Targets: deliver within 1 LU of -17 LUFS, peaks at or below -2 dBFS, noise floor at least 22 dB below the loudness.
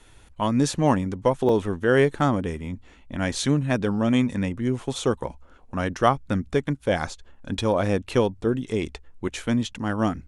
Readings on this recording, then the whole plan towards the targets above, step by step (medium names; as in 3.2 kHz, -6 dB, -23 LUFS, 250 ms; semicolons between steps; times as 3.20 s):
dropouts 1; longest dropout 2.2 ms; loudness -24.5 LUFS; peak level -5.0 dBFS; loudness target -17.0 LUFS
-> interpolate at 1.49 s, 2.2 ms; trim +7.5 dB; peak limiter -2 dBFS